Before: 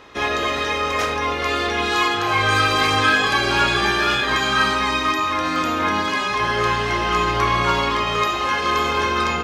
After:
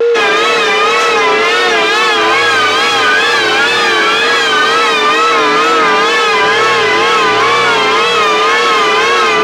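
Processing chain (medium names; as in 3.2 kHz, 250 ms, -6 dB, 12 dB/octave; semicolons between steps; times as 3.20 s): ten-band graphic EQ 125 Hz +6 dB, 250 Hz -11 dB, 500 Hz -12 dB, 1 kHz -10 dB, 2 kHz -6 dB, 4 kHz -4 dB; whistle 450 Hz -34 dBFS; overdrive pedal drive 38 dB, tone 1.6 kHz, clips at -4 dBFS; three-band isolator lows -23 dB, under 220 Hz, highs -13 dB, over 7.9 kHz; wow and flutter 87 cents; trim +5 dB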